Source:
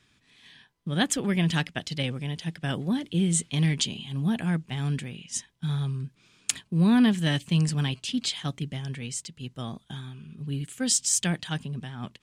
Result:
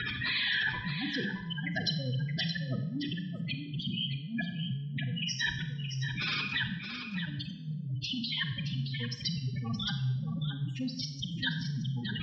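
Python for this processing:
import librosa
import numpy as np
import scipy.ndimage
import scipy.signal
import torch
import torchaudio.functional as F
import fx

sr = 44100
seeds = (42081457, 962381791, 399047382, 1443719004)

y = x + 0.5 * 10.0 ** (-21.0 / 20.0) * np.sign(x)
y = fx.spec_gate(y, sr, threshold_db=-10, keep='strong')
y = fx.highpass(y, sr, hz=120.0, slope=6)
y = fx.peak_eq(y, sr, hz=360.0, db=-8.5, octaves=1.5)
y = fx.over_compress(y, sr, threshold_db=-29.0, ratio=-0.5)
y = scipy.signal.sosfilt(scipy.signal.cheby1(6, 6, 5700.0, 'lowpass', fs=sr, output='sos'), y)
y = y + 10.0 ** (-8.0 / 20.0) * np.pad(y, (int(621 * sr / 1000.0), 0))[:len(y)]
y = fx.rev_schroeder(y, sr, rt60_s=0.79, comb_ms=31, drr_db=7.5)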